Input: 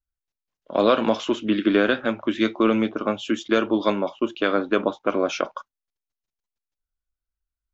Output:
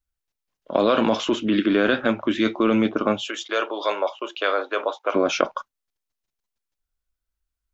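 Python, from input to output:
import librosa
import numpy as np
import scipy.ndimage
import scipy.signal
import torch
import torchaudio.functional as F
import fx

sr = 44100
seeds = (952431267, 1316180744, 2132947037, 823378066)

p1 = fx.over_compress(x, sr, threshold_db=-22.0, ratio=-0.5)
p2 = x + F.gain(torch.from_numpy(p1), -0.5).numpy()
p3 = fx.highpass(p2, sr, hz=480.0, slope=24, at=(3.26, 5.14), fade=0.02)
y = F.gain(torch.from_numpy(p3), -3.0).numpy()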